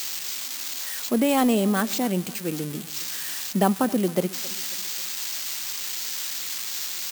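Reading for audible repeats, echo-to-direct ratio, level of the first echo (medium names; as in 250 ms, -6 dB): 3, -20.0 dB, -21.0 dB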